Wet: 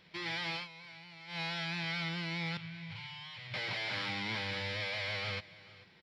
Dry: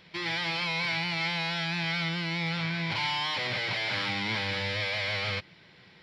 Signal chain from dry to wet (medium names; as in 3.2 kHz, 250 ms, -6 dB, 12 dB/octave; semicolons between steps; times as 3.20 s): 2.57–3.54 s: FFT filter 130 Hz 0 dB, 280 Hz -23 dB, 2.8 kHz -8 dB, 5.6 kHz -14 dB; delay 439 ms -19.5 dB; 0.55–1.40 s: dip -15.5 dB, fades 0.13 s; trim -6.5 dB